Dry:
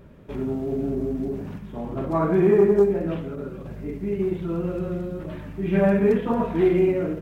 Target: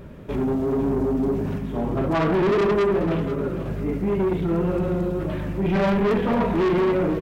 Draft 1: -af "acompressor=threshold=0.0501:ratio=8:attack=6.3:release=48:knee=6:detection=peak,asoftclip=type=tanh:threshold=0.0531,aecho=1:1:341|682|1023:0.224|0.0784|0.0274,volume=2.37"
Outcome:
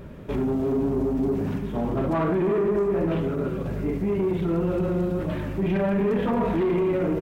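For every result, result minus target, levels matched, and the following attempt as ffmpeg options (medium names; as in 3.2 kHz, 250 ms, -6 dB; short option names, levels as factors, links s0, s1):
compression: peak gain reduction +13.5 dB; echo 148 ms early
-af "asoftclip=type=tanh:threshold=0.0531,aecho=1:1:341|682|1023:0.224|0.0784|0.0274,volume=2.37"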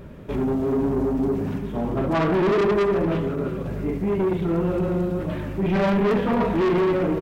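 echo 148 ms early
-af "asoftclip=type=tanh:threshold=0.0531,aecho=1:1:489|978|1467:0.224|0.0784|0.0274,volume=2.37"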